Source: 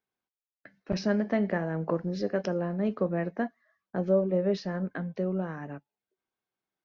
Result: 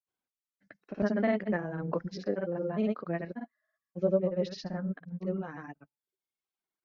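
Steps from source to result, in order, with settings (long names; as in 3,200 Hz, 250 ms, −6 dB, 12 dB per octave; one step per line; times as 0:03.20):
reverb reduction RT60 0.9 s
granular cloud 100 ms, grains 20 per second, pitch spread up and down by 0 semitones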